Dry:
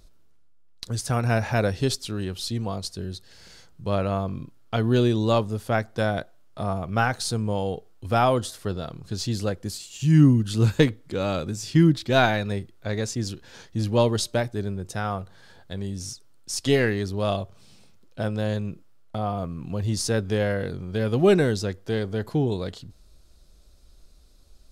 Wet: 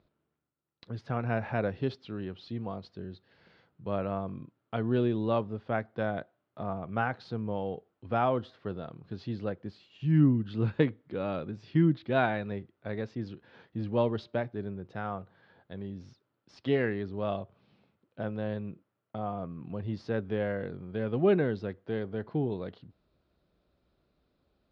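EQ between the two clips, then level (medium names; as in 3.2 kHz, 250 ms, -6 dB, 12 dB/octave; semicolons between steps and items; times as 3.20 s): band-pass 130–4200 Hz; distance through air 330 m; -5.5 dB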